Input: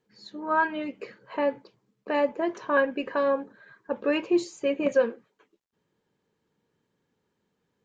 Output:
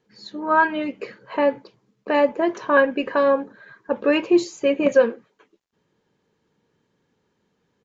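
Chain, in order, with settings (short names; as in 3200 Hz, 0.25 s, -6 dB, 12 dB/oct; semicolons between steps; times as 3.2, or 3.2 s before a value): downsampling 16000 Hz; gain +6.5 dB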